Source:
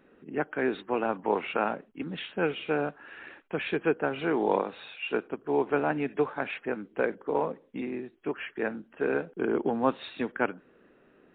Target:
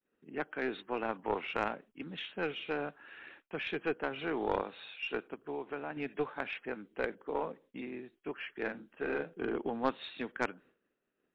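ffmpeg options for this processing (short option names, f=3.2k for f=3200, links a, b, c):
-filter_complex "[0:a]agate=range=-33dB:threshold=-49dB:ratio=3:detection=peak,highshelf=f=2.3k:g=9,asettb=1/sr,asplit=3[a][b][c];[a]atrim=end=5.334[d];[b]atrim=start=5.33:end=5.97,asetpts=PTS-STARTPTS,afade=t=in:d=0.004:c=qsin,afade=t=out:st=0.636:d=0.004:c=qsin,acompressor=threshold=-29dB:ratio=3[e];[c]atrim=start=5.966[f];[d][e]acrossfade=d=0.004:c1=hsin:c2=qsin[g];[g][f]acrossfade=d=0.004:c1=qsin:c2=hsin,aeval=exprs='0.376*(cos(1*acos(clip(val(0)/0.376,-1,1)))-cos(1*PI/2))+0.0841*(cos(4*acos(clip(val(0)/0.376,-1,1)))-cos(4*PI/2))+0.0335*(cos(6*acos(clip(val(0)/0.376,-1,1)))-cos(6*PI/2))':c=same,asettb=1/sr,asplit=3[h][i][j];[h]atrim=end=8.554[k];[i]atrim=start=8.55:end=9.53,asetpts=PTS-STARTPTS,afade=t=in:d=0.004:c=qsin,afade=t=out:st=0.976:d=0.004:c=qsin,asplit=2[l][m];[m]adelay=42,volume=-5dB[n];[l][n]amix=inputs=2:normalize=0,atrim=end_sample=43218[o];[j]atrim=start=9.526[p];[k][o]acrossfade=d=0.004:c1=hsin:c2=qsin[q];[q][p]acrossfade=d=0.004:c1=qsin:c2=hsin,volume=-8.5dB"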